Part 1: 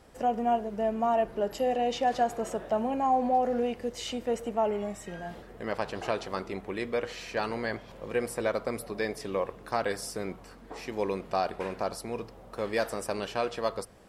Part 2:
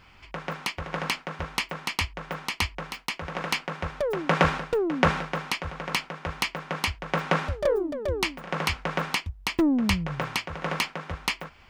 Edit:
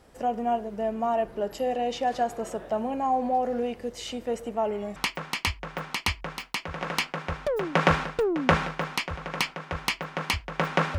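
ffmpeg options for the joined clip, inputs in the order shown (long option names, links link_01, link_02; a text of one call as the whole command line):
ffmpeg -i cue0.wav -i cue1.wav -filter_complex "[0:a]apad=whole_dur=10.98,atrim=end=10.98,atrim=end=4.962[link_01];[1:a]atrim=start=1.498:end=7.52[link_02];[link_01][link_02]acrossfade=duration=0.004:curve1=hsin:curve2=hsin" out.wav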